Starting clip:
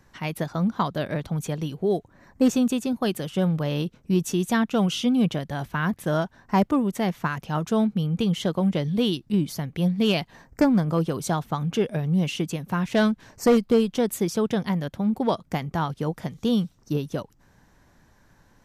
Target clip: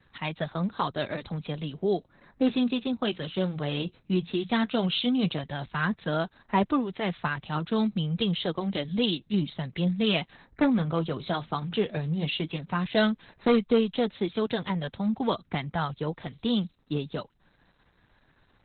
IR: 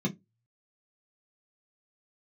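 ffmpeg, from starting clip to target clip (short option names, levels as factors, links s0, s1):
-filter_complex "[0:a]flanger=delay=0.5:depth=9.2:regen=-61:speed=0.13:shape=triangular,highshelf=f=4000:t=q:w=1.5:g=6.5,acrossover=split=210|4400[s0][s1][s2];[s1]crystalizer=i=6.5:c=0[s3];[s0][s3][s2]amix=inputs=3:normalize=0" -ar 48000 -c:a libopus -b:a 8k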